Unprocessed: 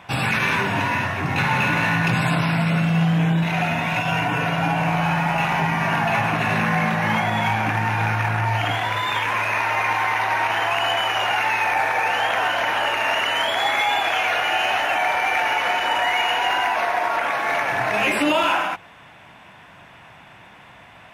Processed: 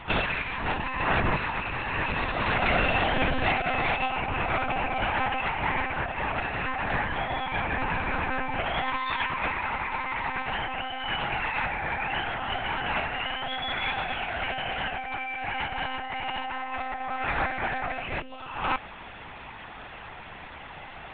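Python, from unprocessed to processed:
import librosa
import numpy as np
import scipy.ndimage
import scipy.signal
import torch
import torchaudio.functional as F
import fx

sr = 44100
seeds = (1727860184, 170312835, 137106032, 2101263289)

y = x + 0.93 * np.pad(x, (int(3.0 * sr / 1000.0), 0))[:len(x)]
y = fx.over_compress(y, sr, threshold_db=-23.0, ratio=-0.5)
y = fx.lpc_monotone(y, sr, seeds[0], pitch_hz=260.0, order=10)
y = y * librosa.db_to_amplitude(-4.5)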